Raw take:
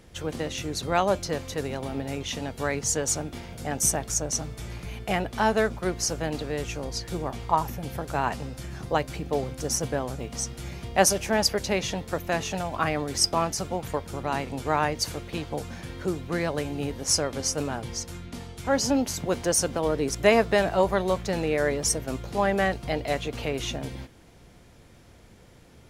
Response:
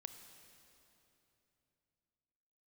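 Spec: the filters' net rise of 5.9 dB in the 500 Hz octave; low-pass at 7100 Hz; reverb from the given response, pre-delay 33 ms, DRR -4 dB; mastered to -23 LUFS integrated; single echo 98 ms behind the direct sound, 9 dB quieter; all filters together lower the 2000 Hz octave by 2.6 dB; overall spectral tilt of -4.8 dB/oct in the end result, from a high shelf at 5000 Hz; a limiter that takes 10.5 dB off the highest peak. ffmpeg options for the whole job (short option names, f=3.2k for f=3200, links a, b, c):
-filter_complex "[0:a]lowpass=7.1k,equalizer=f=500:t=o:g=7.5,equalizer=f=2k:t=o:g=-3,highshelf=f=5k:g=-5,alimiter=limit=-13.5dB:level=0:latency=1,aecho=1:1:98:0.355,asplit=2[a][b];[1:a]atrim=start_sample=2205,adelay=33[c];[b][c]afir=irnorm=-1:irlink=0,volume=9dB[d];[a][d]amix=inputs=2:normalize=0,volume=-2.5dB"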